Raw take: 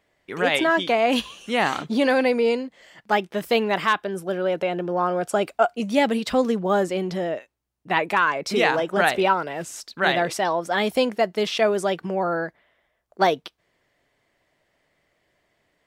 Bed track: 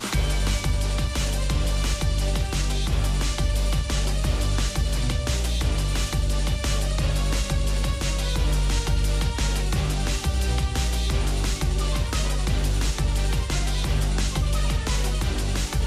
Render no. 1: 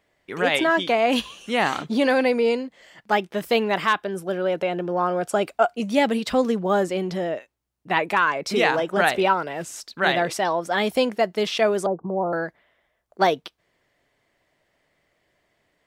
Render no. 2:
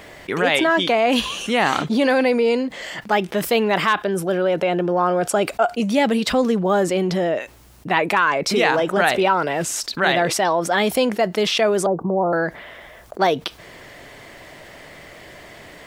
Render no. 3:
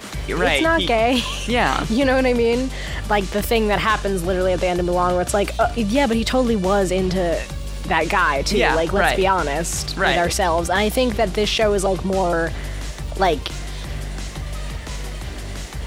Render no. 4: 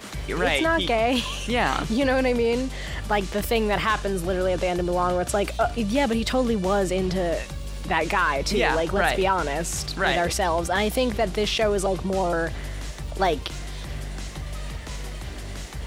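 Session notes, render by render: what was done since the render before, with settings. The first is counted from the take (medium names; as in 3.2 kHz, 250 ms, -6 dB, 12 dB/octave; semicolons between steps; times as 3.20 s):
11.86–12.33 s: steep low-pass 1.1 kHz 48 dB/octave
level flattener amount 50%
add bed track -5.5 dB
trim -4.5 dB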